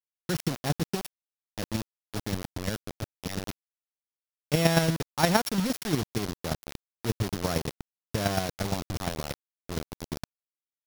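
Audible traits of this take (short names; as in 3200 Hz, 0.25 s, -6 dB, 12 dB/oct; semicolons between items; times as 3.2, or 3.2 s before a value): a buzz of ramps at a fixed pitch in blocks of 8 samples; chopped level 8.6 Hz, depth 60%, duty 15%; a quantiser's noise floor 6-bit, dither none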